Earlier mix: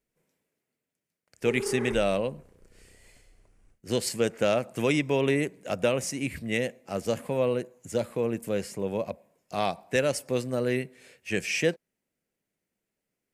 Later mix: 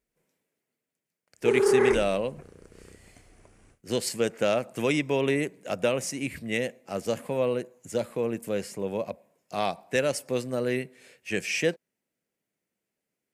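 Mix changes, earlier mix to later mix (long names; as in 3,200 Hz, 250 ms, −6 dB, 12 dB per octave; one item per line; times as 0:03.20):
background +11.5 dB
master: add high-pass filter 120 Hz 6 dB per octave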